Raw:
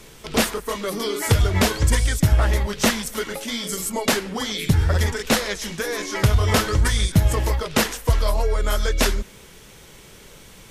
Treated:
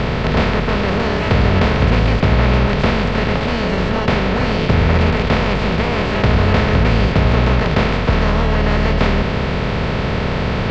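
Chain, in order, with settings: spectral levelling over time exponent 0.2; Bessel low-pass 2.1 kHz, order 6; formant shift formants +5 st; trim -3 dB

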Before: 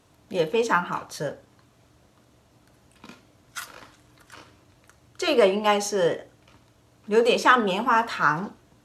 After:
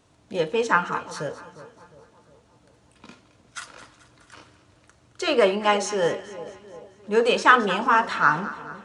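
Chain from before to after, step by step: resampled via 22.05 kHz; dynamic bell 1.6 kHz, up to +4 dB, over -30 dBFS, Q 0.96; two-band feedback delay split 880 Hz, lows 356 ms, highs 218 ms, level -15 dB; trim -1 dB

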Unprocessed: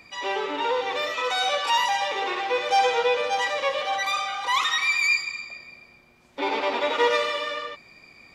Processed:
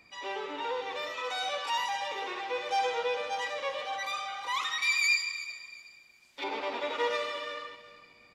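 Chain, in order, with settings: 4.82–6.44 s: tilt shelf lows -9.5 dB, about 1.4 kHz; feedback delay 369 ms, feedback 26%, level -15.5 dB; trim -9 dB

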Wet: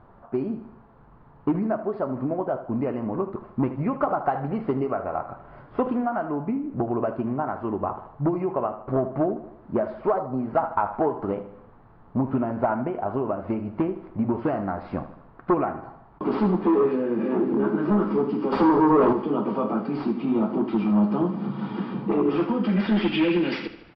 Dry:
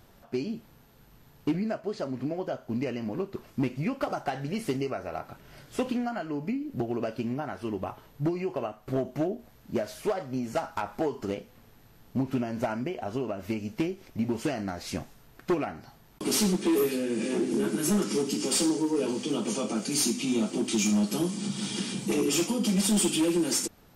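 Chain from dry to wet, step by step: resampled via 11.025 kHz; 18.52–19.13 s: waveshaping leveller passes 3; low-pass sweep 1.1 kHz -> 2.4 kHz, 22.23–23.30 s; on a send: feedback delay 77 ms, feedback 52%, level -13 dB; 10.18–10.38 s: on the sum: time-frequency box 1.4–3.8 kHz -9 dB; trim +3.5 dB

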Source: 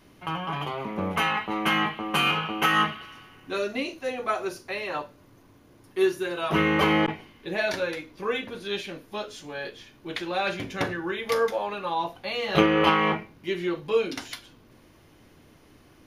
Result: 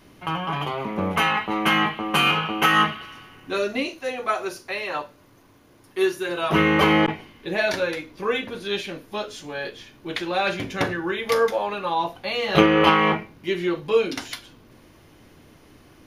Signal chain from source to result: 3.88–6.29 s: bass shelf 430 Hz -5.5 dB; trim +4 dB

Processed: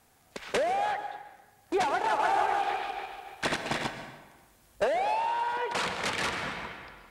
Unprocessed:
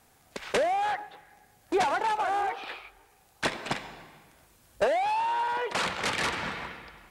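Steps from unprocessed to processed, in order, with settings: 1.89–3.90 s: backward echo that repeats 146 ms, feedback 60%, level -1.5 dB; plate-style reverb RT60 1.1 s, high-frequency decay 0.65×, pre-delay 115 ms, DRR 9.5 dB; trim -2 dB

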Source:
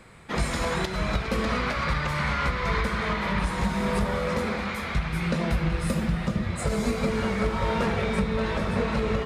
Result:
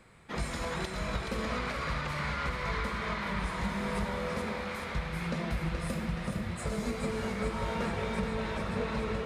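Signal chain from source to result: thinning echo 425 ms, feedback 66%, high-pass 320 Hz, level -6 dB; trim -8 dB

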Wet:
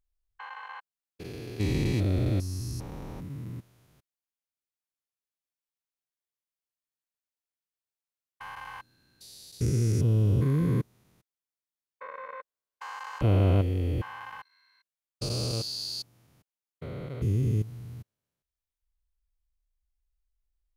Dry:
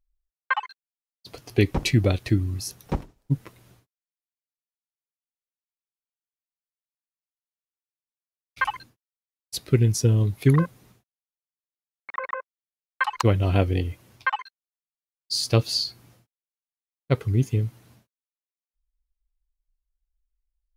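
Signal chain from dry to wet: spectrogram pixelated in time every 400 ms; dynamic bell 2 kHz, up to -4 dB, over -48 dBFS, Q 0.76

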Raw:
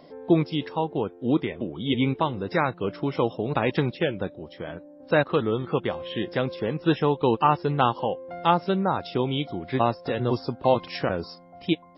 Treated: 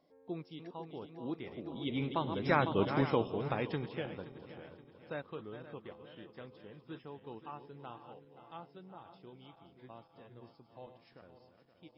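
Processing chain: backward echo that repeats 256 ms, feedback 75%, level -10 dB; Doppler pass-by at 2.80 s, 8 m/s, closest 2.4 m; trim -3 dB

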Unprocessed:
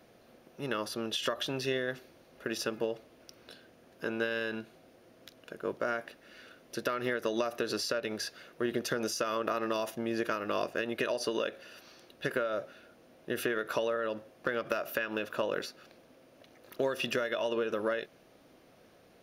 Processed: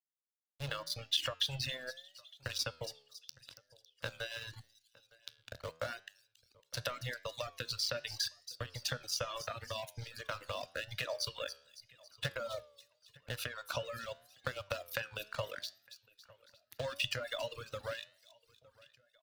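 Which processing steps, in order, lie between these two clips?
hum notches 50/100/150/200/250/300/350/400 Hz; in parallel at -9.5 dB: bit crusher 6-bit; on the sum: compression 6:1, threshold -32 dBFS, peak gain reduction 8.5 dB; elliptic band-stop 160–520 Hz; crossover distortion -46.5 dBFS; resonant low shelf 130 Hz +7 dB, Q 3; on a send: feedback echo behind a high-pass 277 ms, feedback 47%, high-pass 3.9 kHz, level -7.5 dB; on the sum: reverb removal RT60 0.92 s; graphic EQ 125/250/4000 Hz +6/+11/+9 dB; feedback delay 910 ms, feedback 48%, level -23 dB; reverb removal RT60 1.2 s; flange 0.82 Hz, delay 9.9 ms, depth 4.4 ms, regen +87%; trim +4 dB

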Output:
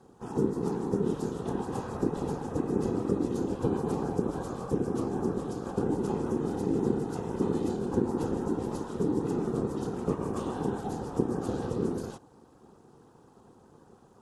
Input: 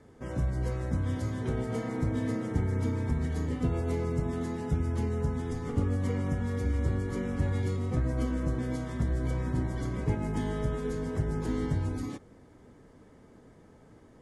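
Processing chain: whisper effect; static phaser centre 760 Hz, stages 4; ring modulator 300 Hz; trim +5.5 dB

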